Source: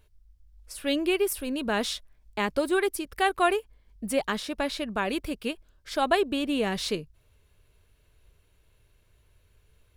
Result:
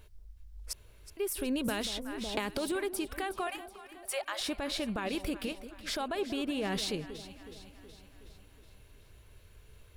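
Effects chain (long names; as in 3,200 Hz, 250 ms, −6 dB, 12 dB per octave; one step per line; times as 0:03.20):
0:03.47–0:04.41: Butterworth high-pass 560 Hz 96 dB per octave
downward compressor 6 to 1, threshold −34 dBFS, peak gain reduction 16 dB
brickwall limiter −31 dBFS, peak gain reduction 9.5 dB
0:00.73–0:01.17: fill with room tone
delay that swaps between a low-pass and a high-pass 185 ms, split 850 Hz, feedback 74%, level −11.5 dB
0:01.68–0:02.72: multiband upward and downward compressor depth 100%
level +6 dB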